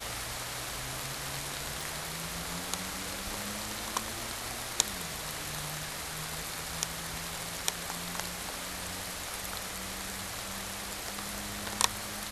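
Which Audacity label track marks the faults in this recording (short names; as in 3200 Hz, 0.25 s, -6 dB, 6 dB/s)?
1.810000	1.810000	pop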